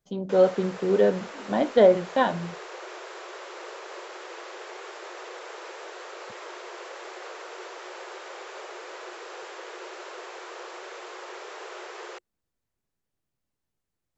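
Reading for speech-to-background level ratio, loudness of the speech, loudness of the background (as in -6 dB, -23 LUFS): 18.0 dB, -22.5 LUFS, -40.5 LUFS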